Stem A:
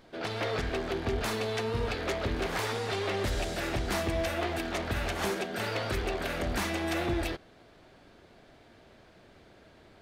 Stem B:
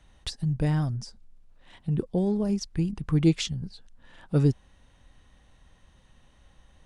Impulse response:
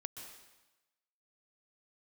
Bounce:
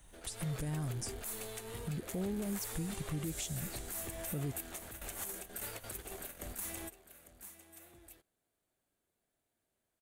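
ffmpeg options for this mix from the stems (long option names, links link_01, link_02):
-filter_complex "[0:a]highshelf=frequency=4500:gain=8,volume=-14.5dB,asplit=2[link_01][link_02];[link_02]volume=-16.5dB[link_03];[1:a]acompressor=threshold=-30dB:ratio=2.5,volume=-3dB,asplit=2[link_04][link_05];[link_05]apad=whole_len=441537[link_06];[link_01][link_06]sidechaingate=range=-33dB:threshold=-59dB:ratio=16:detection=peak[link_07];[link_03]aecho=0:1:852:1[link_08];[link_07][link_04][link_08]amix=inputs=3:normalize=0,aexciter=amount=9.9:drive=1.5:freq=7100,alimiter=level_in=5dB:limit=-24dB:level=0:latency=1:release=117,volume=-5dB"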